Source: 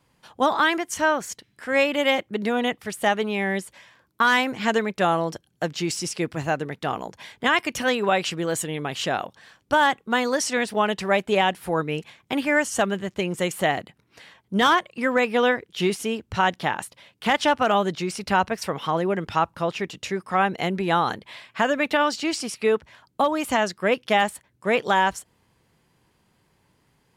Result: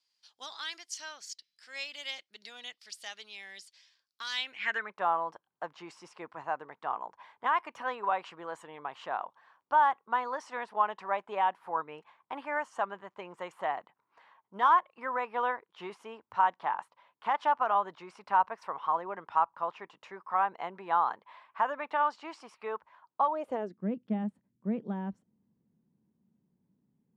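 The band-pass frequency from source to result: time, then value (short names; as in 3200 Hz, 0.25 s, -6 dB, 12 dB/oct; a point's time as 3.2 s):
band-pass, Q 3.9
4.29 s 4800 Hz
4.97 s 1000 Hz
23.25 s 1000 Hz
23.81 s 210 Hz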